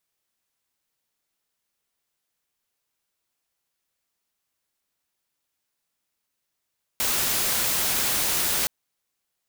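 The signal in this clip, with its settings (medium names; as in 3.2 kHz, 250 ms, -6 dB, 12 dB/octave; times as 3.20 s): noise white, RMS -24 dBFS 1.67 s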